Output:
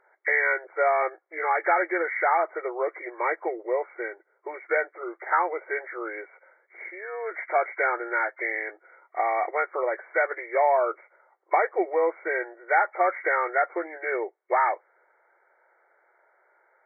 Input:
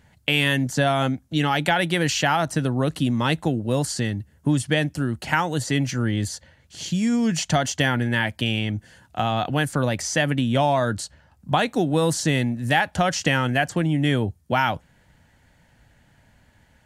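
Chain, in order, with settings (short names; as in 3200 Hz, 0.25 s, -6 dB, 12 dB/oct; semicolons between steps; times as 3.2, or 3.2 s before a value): nonlinear frequency compression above 1000 Hz 1.5:1; brick-wall FIR band-pass 340–2300 Hz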